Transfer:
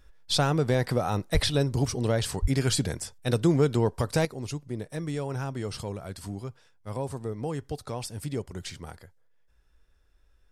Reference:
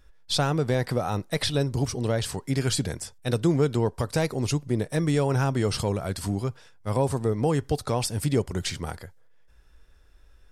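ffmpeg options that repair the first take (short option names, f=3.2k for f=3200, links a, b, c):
-filter_complex "[0:a]asplit=3[a][b][c];[a]afade=t=out:st=1.33:d=0.02[d];[b]highpass=f=140:w=0.5412,highpass=f=140:w=1.3066,afade=t=in:st=1.33:d=0.02,afade=t=out:st=1.45:d=0.02[e];[c]afade=t=in:st=1.45:d=0.02[f];[d][e][f]amix=inputs=3:normalize=0,asplit=3[g][h][i];[g]afade=t=out:st=2.41:d=0.02[j];[h]highpass=f=140:w=0.5412,highpass=f=140:w=1.3066,afade=t=in:st=2.41:d=0.02,afade=t=out:st=2.53:d=0.02[k];[i]afade=t=in:st=2.53:d=0.02[l];[j][k][l]amix=inputs=3:normalize=0,asetnsamples=n=441:p=0,asendcmd='4.25 volume volume 8.5dB',volume=0dB"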